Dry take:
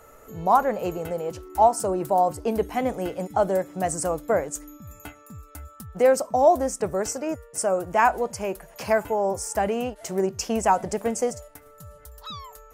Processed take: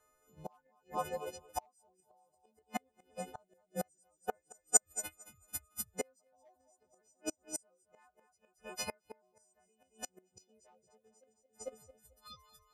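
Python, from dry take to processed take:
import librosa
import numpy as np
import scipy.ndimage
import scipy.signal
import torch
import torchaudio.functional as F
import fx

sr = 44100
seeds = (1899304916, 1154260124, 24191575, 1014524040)

y = fx.freq_snap(x, sr, grid_st=3)
y = scipy.signal.sosfilt(scipy.signal.butter(2, 10000.0, 'lowpass', fs=sr, output='sos'), y)
y = fx.dereverb_blind(y, sr, rt60_s=0.61)
y = fx.graphic_eq(y, sr, hz=(125, 500, 1000, 4000), db=(11, 11, -4, 5), at=(10.3, 11.24))
y = fx.echo_feedback(y, sr, ms=223, feedback_pct=44, wet_db=-7.5)
y = np.clip(10.0 ** (9.5 / 20.0) * y, -1.0, 1.0) / 10.0 ** (9.5 / 20.0)
y = fx.gate_flip(y, sr, shuts_db=-16.0, range_db=-25)
y = fx.high_shelf(y, sr, hz=2500.0, db=8.0, at=(4.53, 5.99), fade=0.02)
y = fx.upward_expand(y, sr, threshold_db=-38.0, expansion=2.5)
y = F.gain(torch.from_numpy(y), 1.0).numpy()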